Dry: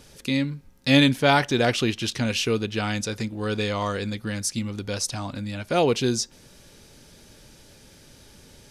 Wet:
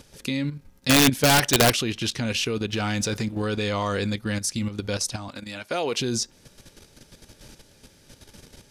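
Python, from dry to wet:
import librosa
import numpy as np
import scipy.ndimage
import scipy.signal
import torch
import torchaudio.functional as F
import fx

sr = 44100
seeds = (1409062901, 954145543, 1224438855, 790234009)

y = fx.high_shelf(x, sr, hz=fx.line((1.13, 3000.0), (1.81, 4700.0)), db=10.0, at=(1.13, 1.81), fade=0.02)
y = fx.leveller(y, sr, passes=1, at=(2.69, 3.42))
y = fx.highpass(y, sr, hz=550.0, slope=6, at=(5.28, 6.0))
y = fx.level_steps(y, sr, step_db=10)
y = (np.mod(10.0 ** (13.5 / 20.0) * y + 1.0, 2.0) - 1.0) / 10.0 ** (13.5 / 20.0)
y = y * 10.0 ** (4.5 / 20.0)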